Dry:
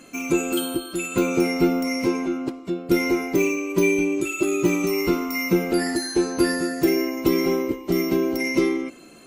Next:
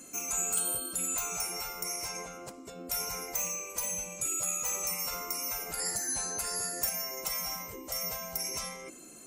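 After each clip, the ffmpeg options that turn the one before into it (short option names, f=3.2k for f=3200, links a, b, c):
-af "afftfilt=real='re*lt(hypot(re,im),0.158)':imag='im*lt(hypot(re,im),0.158)':win_size=1024:overlap=0.75,highshelf=f=5.1k:t=q:w=1.5:g=11,volume=-7dB"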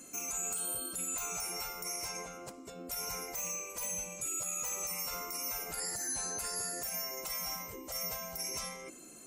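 -af "alimiter=level_in=1.5dB:limit=-24dB:level=0:latency=1:release=43,volume=-1.5dB,volume=-2dB"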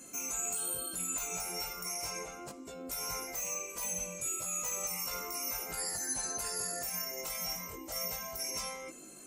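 -af "flanger=delay=19:depth=3.6:speed=0.34,volume=4dB"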